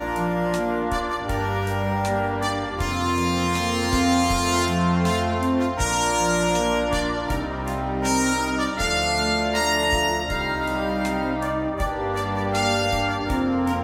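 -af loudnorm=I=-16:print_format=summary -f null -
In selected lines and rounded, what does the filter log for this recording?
Input Integrated:    -22.9 LUFS
Input True Peak:      -9.2 dBTP
Input LRA:             2.4 LU
Input Threshold:     -32.9 LUFS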